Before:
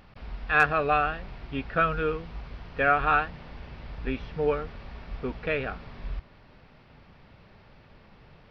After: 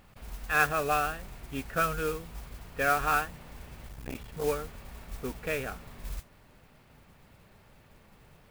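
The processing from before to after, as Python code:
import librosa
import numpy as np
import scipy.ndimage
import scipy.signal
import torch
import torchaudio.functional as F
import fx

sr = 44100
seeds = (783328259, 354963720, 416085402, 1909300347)

y = fx.mod_noise(x, sr, seeds[0], snr_db=14)
y = fx.transformer_sat(y, sr, knee_hz=400.0, at=(3.88, 4.44))
y = y * 10.0 ** (-4.0 / 20.0)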